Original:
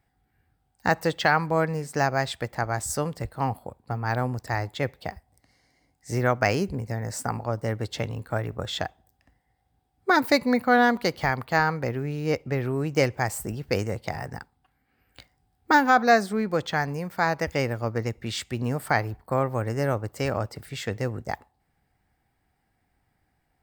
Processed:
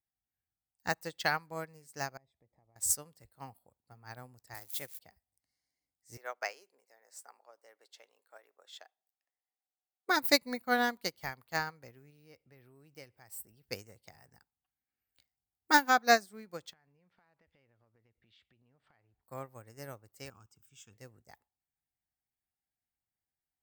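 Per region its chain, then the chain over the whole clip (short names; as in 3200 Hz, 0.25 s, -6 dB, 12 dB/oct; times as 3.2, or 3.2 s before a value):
2.17–2.76 compressor 3:1, threshold -37 dBFS + running mean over 30 samples
4.54–4.99 switching spikes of -28.5 dBFS + HPF 180 Hz 6 dB/oct
6.17–10.09 HPF 450 Hz 24 dB/oct + high shelf 6300 Hz -8 dB
12.1–13.64 compressor 1.5:1, threshold -36 dBFS + bell 6800 Hz -13 dB 0.23 oct
16.73–19.23 Chebyshev low-pass 3300 Hz, order 3 + compressor 12:1, threshold -38 dBFS
20.3–20.93 bell 6600 Hz +4 dB 0.23 oct + fixed phaser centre 2900 Hz, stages 8
whole clip: pre-emphasis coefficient 0.8; upward expander 2.5:1, over -42 dBFS; gain +8 dB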